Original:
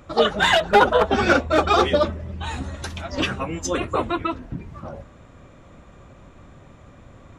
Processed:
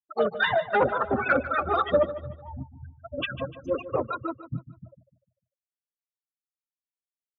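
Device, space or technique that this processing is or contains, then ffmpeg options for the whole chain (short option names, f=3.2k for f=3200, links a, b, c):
guitar amplifier with harmonic tremolo: -filter_complex "[0:a]afftfilt=real='re*gte(hypot(re,im),0.158)':imag='im*gte(hypot(re,im),0.158)':win_size=1024:overlap=0.75,equalizer=f=270:t=o:w=0.27:g=2.5,acrossover=split=980[a][b];[a]aeval=exprs='val(0)*(1-1/2+1/2*cos(2*PI*3.5*n/s))':c=same[c];[b]aeval=exprs='val(0)*(1-1/2-1/2*cos(2*PI*3.5*n/s))':c=same[d];[c][d]amix=inputs=2:normalize=0,asoftclip=type=tanh:threshold=-12dB,highpass=87,equalizer=f=130:t=q:w=4:g=10,equalizer=f=290:t=q:w=4:g=-3,equalizer=f=550:t=q:w=4:g=6,equalizer=f=1.3k:t=q:w=4:g=6,equalizer=f=1.9k:t=q:w=4:g=4,lowpass=f=3.9k:w=0.5412,lowpass=f=3.9k:w=1.3066,aecho=1:1:149|298|447|596:0.2|0.0778|0.0303|0.0118,volume=-3dB"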